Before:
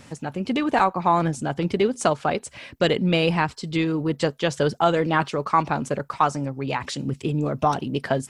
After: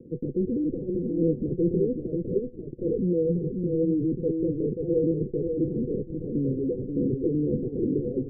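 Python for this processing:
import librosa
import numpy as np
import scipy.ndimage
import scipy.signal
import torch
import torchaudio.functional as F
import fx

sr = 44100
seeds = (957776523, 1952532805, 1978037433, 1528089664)

y = scipy.signal.sosfilt(scipy.signal.butter(4, 210.0, 'highpass', fs=sr, output='sos'), x)
y = fx.rider(y, sr, range_db=5, speed_s=0.5)
y = fx.leveller(y, sr, passes=3)
y = fx.transient(y, sr, attack_db=-11, sustain_db=2)
y = fx.tube_stage(y, sr, drive_db=25.0, bias=0.65)
y = scipy.signal.sosfilt(scipy.signal.cheby1(6, 9, 510.0, 'lowpass', fs=sr, output='sos'), y)
y = y + 10.0 ** (-5.0 / 20.0) * np.pad(y, (int(537 * sr / 1000.0), 0))[:len(y)]
y = fx.notch_cascade(y, sr, direction='falling', hz=1.4, at=(2.18, 4.24))
y = F.gain(torch.from_numpy(y), 8.5).numpy()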